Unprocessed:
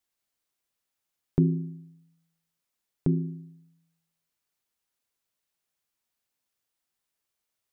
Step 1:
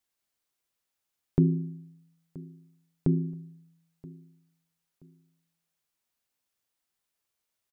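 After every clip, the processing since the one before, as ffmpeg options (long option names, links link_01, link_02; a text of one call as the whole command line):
ffmpeg -i in.wav -af "aecho=1:1:977|1954:0.0891|0.0258" out.wav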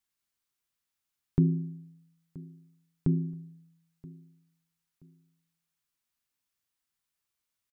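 ffmpeg -i in.wav -af "firequalizer=gain_entry='entry(120,0);entry(550,-9);entry(1100,-2)':delay=0.05:min_phase=1" out.wav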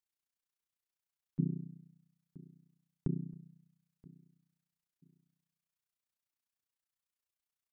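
ffmpeg -i in.wav -af "tremolo=f=30:d=1,volume=-5dB" out.wav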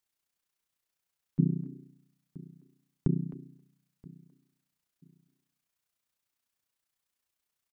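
ffmpeg -i in.wav -filter_complex "[0:a]asplit=2[link_01][link_02];[link_02]adelay=260,highpass=300,lowpass=3400,asoftclip=type=hard:threshold=-28dB,volume=-11dB[link_03];[link_01][link_03]amix=inputs=2:normalize=0,volume=7dB" out.wav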